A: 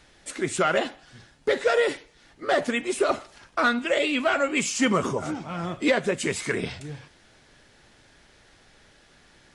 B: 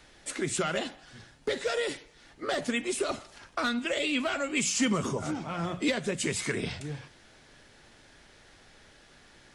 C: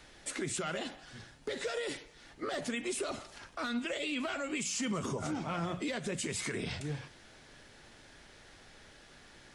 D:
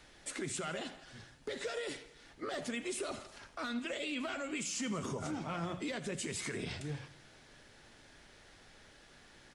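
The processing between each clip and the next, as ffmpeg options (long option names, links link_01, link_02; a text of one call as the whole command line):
ffmpeg -i in.wav -filter_complex "[0:a]acrossover=split=230|3000[link_01][link_02][link_03];[link_02]acompressor=threshold=-32dB:ratio=3[link_04];[link_01][link_04][link_03]amix=inputs=3:normalize=0,bandreject=frequency=60:width_type=h:width=6,bandreject=frequency=120:width_type=h:width=6,bandreject=frequency=180:width_type=h:width=6" out.wav
ffmpeg -i in.wav -af "alimiter=level_in=3dB:limit=-24dB:level=0:latency=1:release=101,volume=-3dB" out.wav
ffmpeg -i in.wav -af "aecho=1:1:82|164|246|328|410:0.141|0.0777|0.0427|0.0235|0.0129,volume=-3dB" out.wav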